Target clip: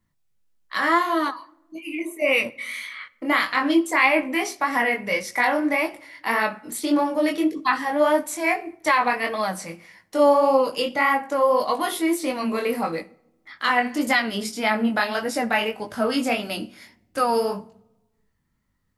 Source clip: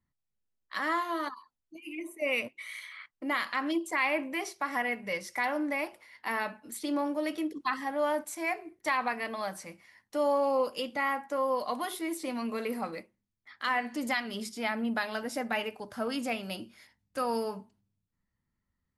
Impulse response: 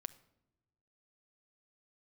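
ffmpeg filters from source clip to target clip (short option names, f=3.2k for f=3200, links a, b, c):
-filter_complex "[0:a]flanger=delay=18.5:depth=6.1:speed=1.7,asplit=2[a][b];[1:a]atrim=start_sample=2205[c];[b][c]afir=irnorm=-1:irlink=0,volume=6dB[d];[a][d]amix=inputs=2:normalize=0,volume=5.5dB"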